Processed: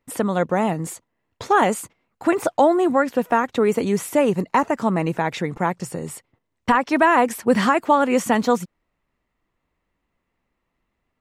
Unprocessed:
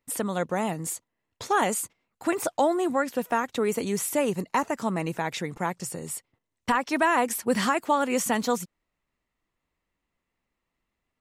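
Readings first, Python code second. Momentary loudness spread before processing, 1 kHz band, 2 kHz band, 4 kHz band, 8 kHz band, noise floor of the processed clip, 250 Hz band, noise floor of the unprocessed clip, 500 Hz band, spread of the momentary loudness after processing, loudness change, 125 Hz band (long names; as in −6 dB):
11 LU, +7.0 dB, +5.5 dB, +2.0 dB, −2.0 dB, −77 dBFS, +7.5 dB, −83 dBFS, +7.5 dB, 14 LU, +6.5 dB, +7.5 dB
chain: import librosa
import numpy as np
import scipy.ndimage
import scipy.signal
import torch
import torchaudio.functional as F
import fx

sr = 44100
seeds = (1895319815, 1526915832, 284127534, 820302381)

y = fx.high_shelf(x, sr, hz=3700.0, db=-11.5)
y = y * 10.0 ** (7.5 / 20.0)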